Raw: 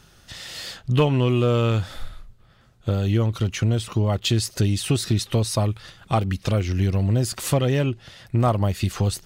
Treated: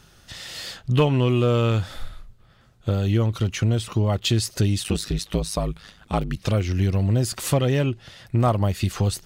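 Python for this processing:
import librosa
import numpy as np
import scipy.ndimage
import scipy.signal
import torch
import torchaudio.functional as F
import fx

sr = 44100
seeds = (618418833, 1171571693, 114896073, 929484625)

y = fx.ring_mod(x, sr, carrier_hz=52.0, at=(4.83, 6.35), fade=0.02)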